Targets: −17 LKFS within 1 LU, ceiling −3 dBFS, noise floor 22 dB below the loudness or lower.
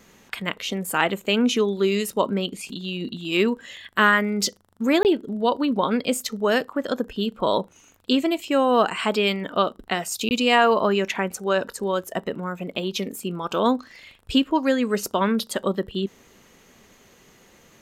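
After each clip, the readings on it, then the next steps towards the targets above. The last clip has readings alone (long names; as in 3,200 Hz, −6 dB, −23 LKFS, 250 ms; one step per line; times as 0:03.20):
number of dropouts 2; longest dropout 19 ms; integrated loudness −23.5 LKFS; sample peak −5.0 dBFS; target loudness −17.0 LKFS
→ repair the gap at 0:05.03/0:10.29, 19 ms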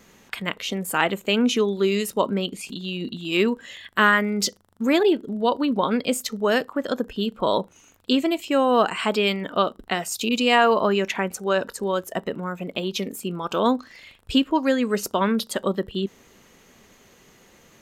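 number of dropouts 0; integrated loudness −23.5 LKFS; sample peak −5.0 dBFS; target loudness −17.0 LKFS
→ level +6.5 dB
brickwall limiter −3 dBFS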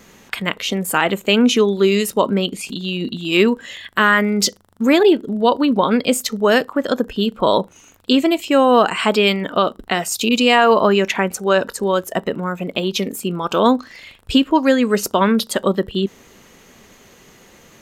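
integrated loudness −17.5 LKFS; sample peak −3.0 dBFS; background noise floor −48 dBFS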